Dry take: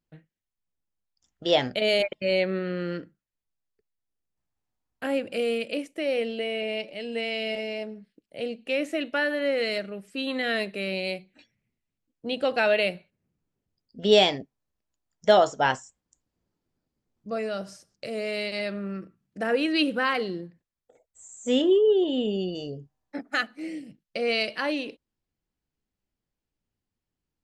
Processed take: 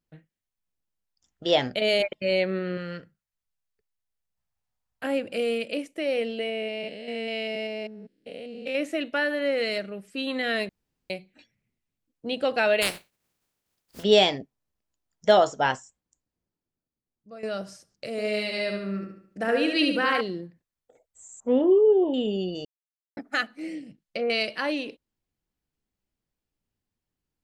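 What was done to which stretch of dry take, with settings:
0:02.77–0:05.04: parametric band 310 Hz −13.5 dB
0:06.49–0:08.75: spectrum averaged block by block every 200 ms
0:10.69–0:11.10: fill with room tone
0:12.81–0:14.02: compressing power law on the bin magnitudes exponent 0.34
0:15.55–0:17.43: fade out quadratic, to −13 dB
0:18.11–0:20.21: repeating echo 71 ms, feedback 43%, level −4.5 dB
0:21.40–0:22.14: low-pass with resonance 1,000 Hz, resonance Q 3.7
0:22.65–0:23.17: silence
0:23.73–0:24.30: treble cut that deepens with the level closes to 1,000 Hz, closed at −23 dBFS

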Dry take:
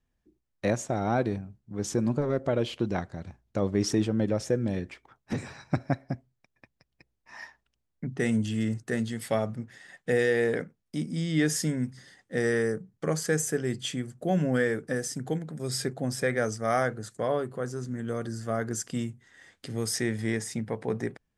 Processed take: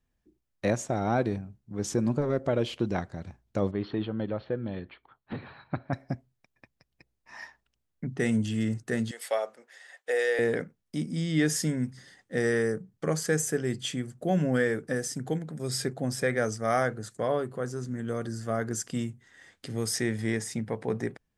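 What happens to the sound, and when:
0:03.71–0:05.93: Chebyshev low-pass with heavy ripple 4,400 Hz, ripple 6 dB
0:09.11–0:10.39: Chebyshev high-pass filter 500 Hz, order 3

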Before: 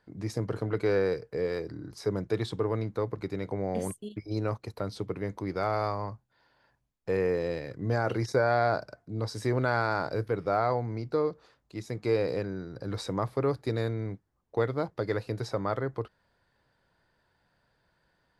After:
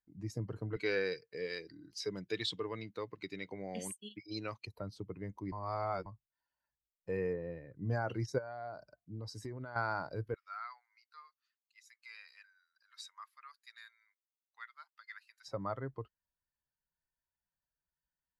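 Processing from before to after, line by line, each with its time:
0:00.76–0:04.67: meter weighting curve D
0:05.52–0:06.06: reverse
0:07.33–0:07.76: low-pass filter 2,100 Hz
0:08.38–0:09.76: downward compressor 12 to 1, threshold −29 dBFS
0:10.34–0:15.48: high-pass filter 1,300 Hz 24 dB per octave
whole clip: spectral dynamics exaggerated over time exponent 1.5; dynamic equaliser 420 Hz, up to −3 dB, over −39 dBFS, Q 1.2; level −4 dB

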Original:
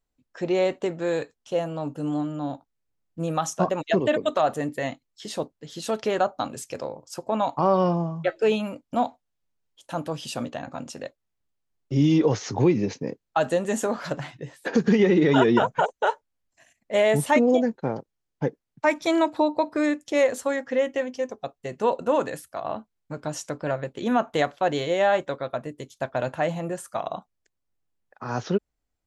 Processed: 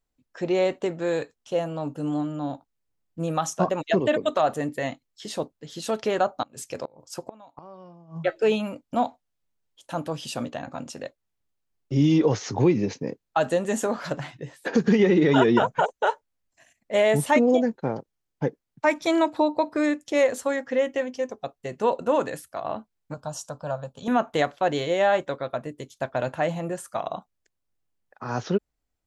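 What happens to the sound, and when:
0:06.42–0:08.18: gate with flip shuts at −18 dBFS, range −25 dB
0:23.14–0:24.08: phaser with its sweep stopped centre 850 Hz, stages 4

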